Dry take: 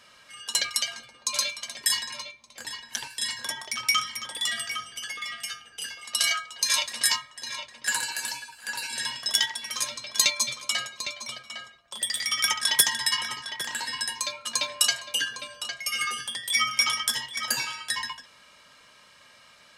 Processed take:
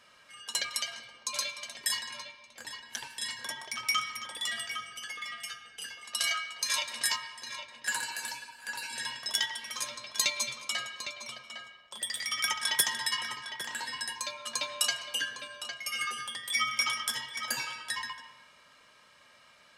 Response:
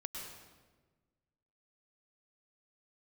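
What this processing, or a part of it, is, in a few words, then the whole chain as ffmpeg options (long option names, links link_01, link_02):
filtered reverb send: -filter_complex "[0:a]asplit=2[link_01][link_02];[link_02]highpass=frequency=250:poles=1,lowpass=3300[link_03];[1:a]atrim=start_sample=2205[link_04];[link_03][link_04]afir=irnorm=-1:irlink=0,volume=-4.5dB[link_05];[link_01][link_05]amix=inputs=2:normalize=0,volume=-6.5dB"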